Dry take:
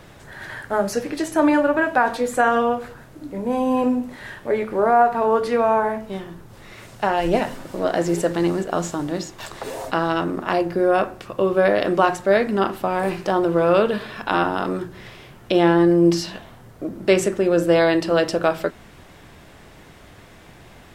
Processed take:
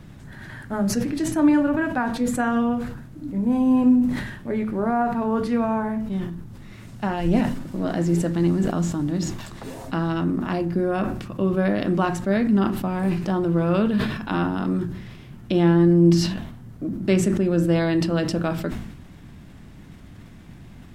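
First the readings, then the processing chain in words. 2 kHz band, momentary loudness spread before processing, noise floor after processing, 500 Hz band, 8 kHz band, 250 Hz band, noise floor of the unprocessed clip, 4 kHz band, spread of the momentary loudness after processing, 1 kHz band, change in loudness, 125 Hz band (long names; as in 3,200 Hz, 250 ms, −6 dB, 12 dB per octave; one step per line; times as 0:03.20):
−6.5 dB, 15 LU, −43 dBFS, −7.0 dB, −1.5 dB, +2.5 dB, −46 dBFS, −4.0 dB, 15 LU, −8.0 dB, −2.0 dB, +6.5 dB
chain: low shelf with overshoot 330 Hz +10.5 dB, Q 1.5
level that may fall only so fast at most 58 dB per second
level −7 dB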